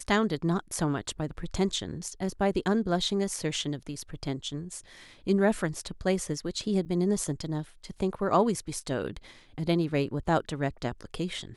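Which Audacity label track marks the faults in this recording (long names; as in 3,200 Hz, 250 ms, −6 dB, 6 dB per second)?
6.850000	6.860000	drop-out 8.9 ms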